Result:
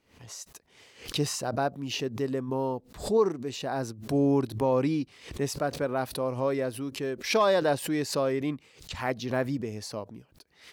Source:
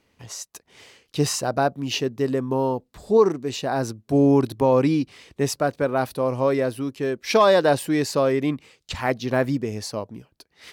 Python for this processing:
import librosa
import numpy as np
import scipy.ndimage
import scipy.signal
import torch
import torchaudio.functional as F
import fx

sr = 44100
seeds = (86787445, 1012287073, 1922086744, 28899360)

y = fx.pre_swell(x, sr, db_per_s=130.0)
y = y * librosa.db_to_amplitude(-7.0)